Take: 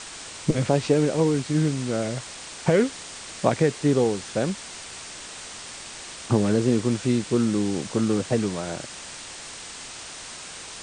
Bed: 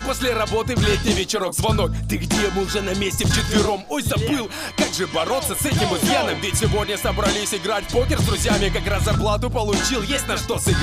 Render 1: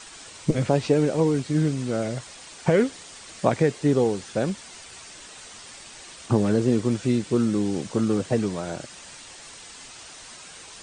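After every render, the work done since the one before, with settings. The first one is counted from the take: noise reduction 7 dB, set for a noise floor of -39 dBFS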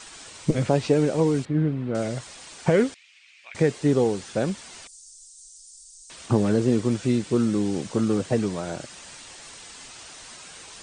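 1.45–1.95 s: distance through air 490 m; 2.94–3.55 s: ladder band-pass 2.6 kHz, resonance 70%; 4.87–6.10 s: inverse Chebyshev band-stop 110–1900 Hz, stop band 60 dB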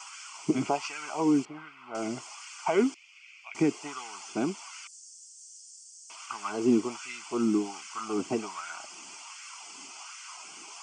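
static phaser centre 2.6 kHz, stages 8; LFO high-pass sine 1.3 Hz 300–1600 Hz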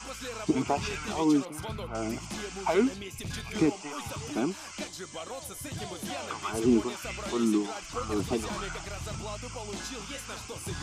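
add bed -18.5 dB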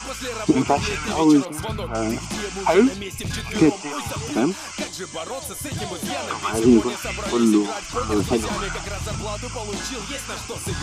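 trim +9 dB

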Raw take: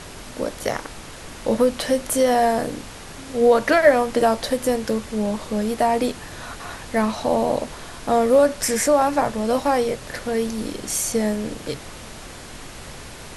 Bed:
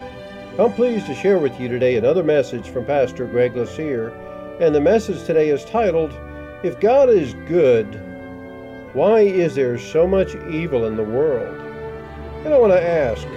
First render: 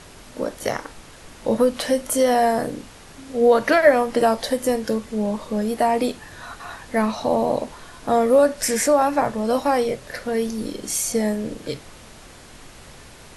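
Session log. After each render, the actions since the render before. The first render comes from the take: noise print and reduce 6 dB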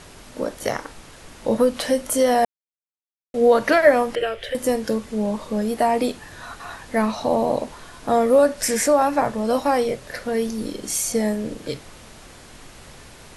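2.45–3.34 s: mute; 4.15–4.55 s: FFT filter 110 Hz 0 dB, 260 Hz -25 dB, 380 Hz -1 dB, 600 Hz -6 dB, 940 Hz -21 dB, 1.4 kHz -2 dB, 3.1 kHz +6 dB, 4.4 kHz -15 dB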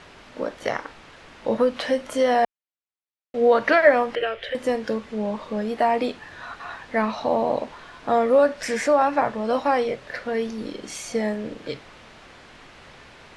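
low-pass 2.8 kHz 12 dB/octave; tilt EQ +2 dB/octave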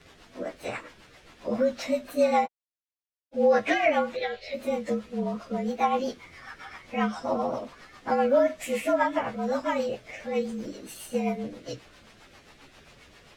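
frequency axis rescaled in octaves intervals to 111%; rotary cabinet horn 7.5 Hz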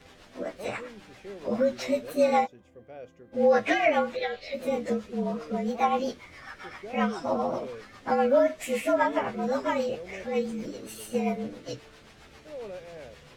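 add bed -26.5 dB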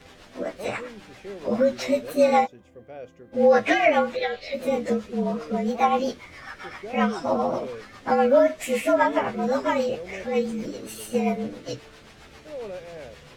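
trim +4 dB

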